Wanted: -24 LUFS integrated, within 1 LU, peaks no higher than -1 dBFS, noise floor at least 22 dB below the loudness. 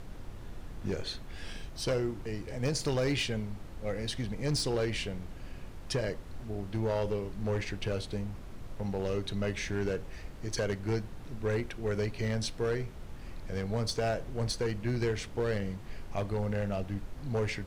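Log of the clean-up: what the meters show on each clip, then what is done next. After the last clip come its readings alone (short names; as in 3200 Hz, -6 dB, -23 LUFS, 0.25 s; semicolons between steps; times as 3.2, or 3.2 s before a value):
clipped 1.5%; flat tops at -24.5 dBFS; noise floor -45 dBFS; noise floor target -56 dBFS; loudness -34.0 LUFS; peak -24.5 dBFS; loudness target -24.0 LUFS
-> clip repair -24.5 dBFS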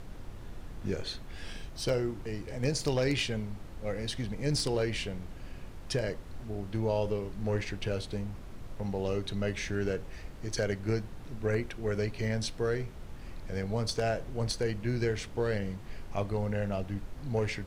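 clipped 0.0%; noise floor -45 dBFS; noise floor target -56 dBFS
-> noise print and reduce 11 dB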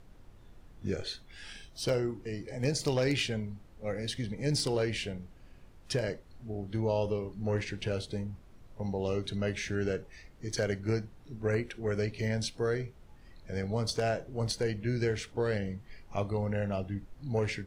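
noise floor -55 dBFS; noise floor target -56 dBFS
-> noise print and reduce 6 dB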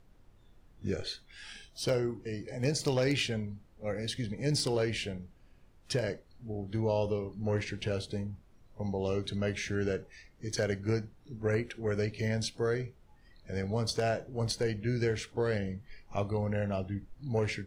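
noise floor -60 dBFS; loudness -33.5 LUFS; peak -16.0 dBFS; loudness target -24.0 LUFS
-> gain +9.5 dB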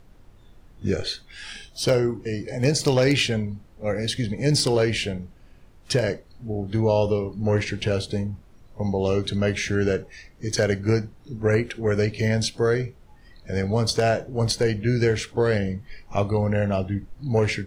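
loudness -24.0 LUFS; peak -6.5 dBFS; noise floor -51 dBFS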